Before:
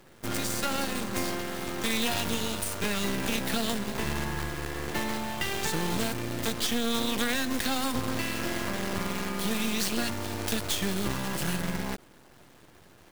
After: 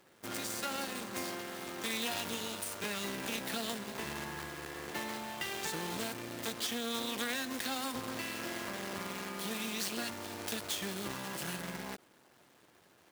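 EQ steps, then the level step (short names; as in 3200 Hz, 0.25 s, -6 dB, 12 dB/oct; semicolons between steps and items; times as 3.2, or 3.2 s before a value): HPF 270 Hz 6 dB/oct; -6.5 dB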